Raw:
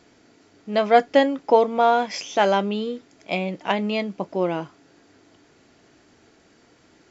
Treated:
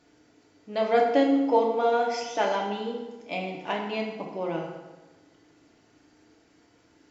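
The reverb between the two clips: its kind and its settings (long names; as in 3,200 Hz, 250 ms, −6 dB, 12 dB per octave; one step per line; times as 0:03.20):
feedback delay network reverb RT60 1.2 s, low-frequency decay 1×, high-frequency decay 0.75×, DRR −1 dB
level −9 dB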